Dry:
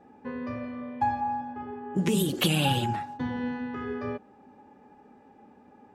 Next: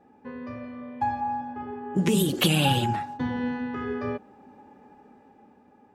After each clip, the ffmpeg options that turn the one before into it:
ffmpeg -i in.wav -af "dynaudnorm=framelen=270:gausssize=9:maxgain=6dB,volume=-3dB" out.wav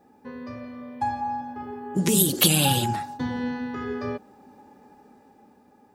ffmpeg -i in.wav -af "aexciter=amount=3.6:drive=3:freq=3900" out.wav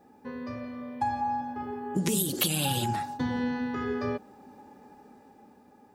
ffmpeg -i in.wav -af "acompressor=threshold=-24dB:ratio=6" out.wav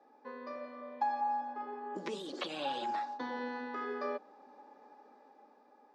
ffmpeg -i in.wav -filter_complex "[0:a]highpass=frequency=310:width=0.5412,highpass=frequency=310:width=1.3066,equalizer=frequency=380:width_type=q:width=4:gain=-4,equalizer=frequency=590:width_type=q:width=4:gain=5,equalizer=frequency=1100:width_type=q:width=4:gain=6,equalizer=frequency=2900:width_type=q:width=4:gain=-5,lowpass=frequency=5300:width=0.5412,lowpass=frequency=5300:width=1.3066,acrossover=split=3300[link_01][link_02];[link_02]acompressor=threshold=-47dB:ratio=4:attack=1:release=60[link_03];[link_01][link_03]amix=inputs=2:normalize=0,volume=-5dB" out.wav

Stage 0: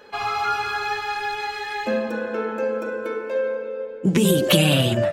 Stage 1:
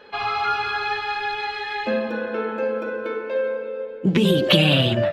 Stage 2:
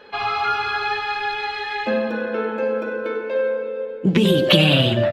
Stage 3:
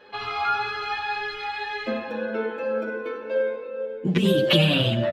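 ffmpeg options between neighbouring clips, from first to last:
ffmpeg -i in.wav -af "highshelf=frequency=5400:width_type=q:width=1.5:gain=-12" out.wav
ffmpeg -i in.wav -af "aecho=1:1:95:0.188,volume=1.5dB" out.wav
ffmpeg -i in.wav -filter_complex "[0:a]asplit=2[link_01][link_02];[link_02]adelay=8,afreqshift=1.9[link_03];[link_01][link_03]amix=inputs=2:normalize=1,volume=-1.5dB" out.wav

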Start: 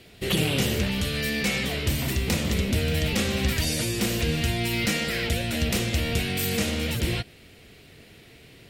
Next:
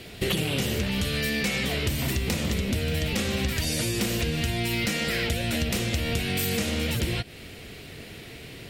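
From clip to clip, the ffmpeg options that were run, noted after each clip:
ffmpeg -i in.wav -af "acompressor=threshold=-32dB:ratio=6,volume=8dB" out.wav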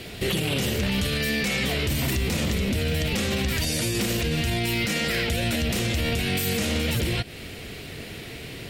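ffmpeg -i in.wav -af "alimiter=limit=-21dB:level=0:latency=1:release=16,volume=4.5dB" out.wav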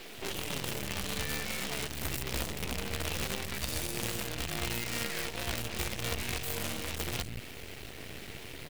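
ffmpeg -i in.wav -filter_complex "[0:a]asoftclip=type=hard:threshold=-28.5dB,acrossover=split=200|5700[link_01][link_02][link_03];[link_03]adelay=60[link_04];[link_01]adelay=170[link_05];[link_05][link_02][link_04]amix=inputs=3:normalize=0,acrusher=bits=5:dc=4:mix=0:aa=0.000001,volume=-2.5dB" out.wav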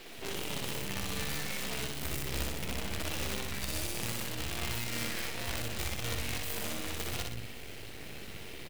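ffmpeg -i in.wav -af "aecho=1:1:61|122|183|244|305|366:0.668|0.314|0.148|0.0694|0.0326|0.0153,volume=-3dB" out.wav

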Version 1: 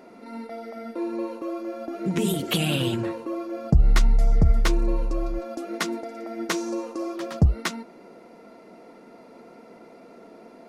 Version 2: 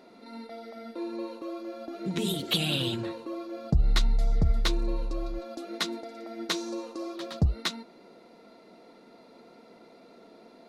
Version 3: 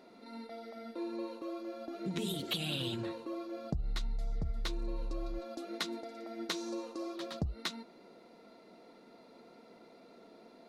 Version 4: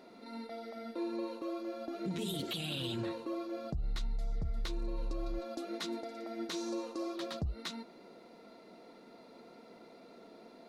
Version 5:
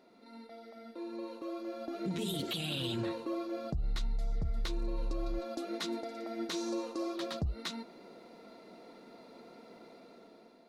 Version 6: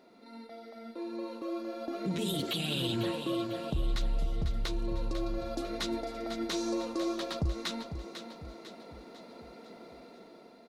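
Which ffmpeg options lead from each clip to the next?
ffmpeg -i in.wav -af "equalizer=frequency=3900:width_type=o:width=0.5:gain=12.5,volume=-6dB" out.wav
ffmpeg -i in.wav -af "acompressor=threshold=-28dB:ratio=6,volume=-4dB" out.wav
ffmpeg -i in.wav -af "alimiter=level_in=7dB:limit=-24dB:level=0:latency=1:release=23,volume=-7dB,volume=2dB" out.wav
ffmpeg -i in.wav -af "dynaudnorm=framelen=990:gausssize=3:maxgain=9dB,volume=-7dB" out.wav
ffmpeg -i in.wav -af "aecho=1:1:498|996|1494|1992|2490:0.335|0.161|0.0772|0.037|0.0178,volume=3dB" out.wav

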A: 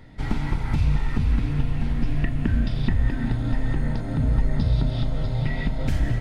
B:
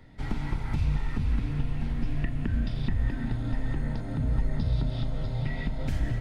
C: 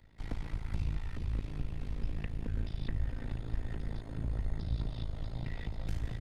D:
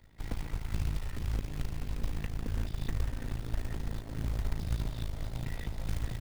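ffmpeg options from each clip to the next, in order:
ffmpeg -i in.wav -filter_complex "[0:a]acrossover=split=140[link_01][link_02];[link_02]acompressor=threshold=-24dB:ratio=2.5[link_03];[link_01][link_03]amix=inputs=2:normalize=0,volume=-5.5dB" out.wav
ffmpeg -i in.wav -filter_complex "[0:a]tremolo=f=54:d=0.919,acrossover=split=110|2400[link_01][link_02][link_03];[link_02]aeval=exprs='max(val(0),0)':channel_layout=same[link_04];[link_03]aecho=1:1:1131:0.376[link_05];[link_01][link_04][link_05]amix=inputs=3:normalize=0,volume=-3dB" out.wav
ffmpeg -i in.wav -af "acrusher=bits=4:mode=log:mix=0:aa=0.000001,volume=1.5dB" out.wav

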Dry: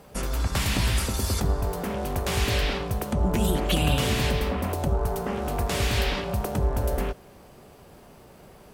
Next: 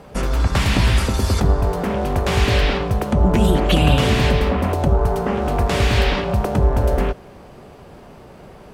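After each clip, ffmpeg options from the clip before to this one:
ffmpeg -i in.wav -af "aemphasis=mode=reproduction:type=50kf,volume=8.5dB" out.wav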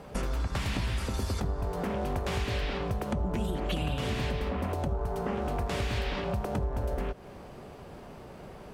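ffmpeg -i in.wav -af "acompressor=threshold=-24dB:ratio=5,volume=-4.5dB" out.wav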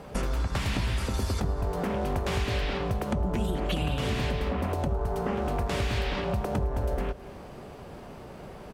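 ffmpeg -i in.wav -af "aecho=1:1:212:0.106,volume=2.5dB" out.wav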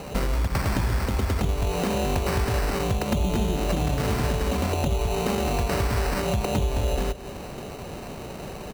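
ffmpeg -i in.wav -filter_complex "[0:a]asplit=2[link_01][link_02];[link_02]acompressor=threshold=-37dB:ratio=6,volume=-2.5dB[link_03];[link_01][link_03]amix=inputs=2:normalize=0,acrusher=samples=13:mix=1:aa=0.000001,volume=2.5dB" out.wav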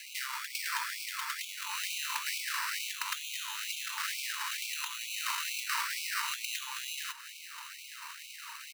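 ffmpeg -i in.wav -af "acrusher=bits=6:mix=0:aa=0.5,afftfilt=real='re*gte(b*sr/1024,860*pow(2200/860,0.5+0.5*sin(2*PI*2.2*pts/sr)))':imag='im*gte(b*sr/1024,860*pow(2200/860,0.5+0.5*sin(2*PI*2.2*pts/sr)))':win_size=1024:overlap=0.75" out.wav

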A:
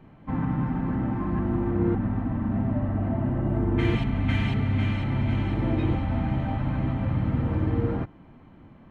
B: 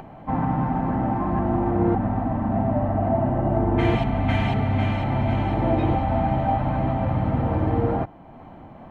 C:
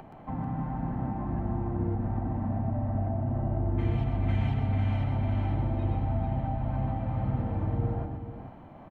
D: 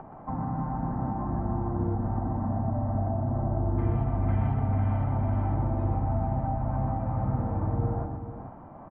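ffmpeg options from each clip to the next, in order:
ffmpeg -i in.wav -af "acompressor=mode=upward:threshold=-40dB:ratio=2.5,equalizer=frequency=730:width=1.7:gain=13.5,volume=1.5dB" out.wav
ffmpeg -i in.wav -filter_complex "[0:a]acrossover=split=230[link_01][link_02];[link_02]acompressor=threshold=-32dB:ratio=6[link_03];[link_01][link_03]amix=inputs=2:normalize=0,aecho=1:1:124|441:0.531|0.376,volume=-6.5dB" out.wav
ffmpeg -i in.wav -af "lowpass=frequency=1200:width_type=q:width=1.6,volume=1dB" out.wav

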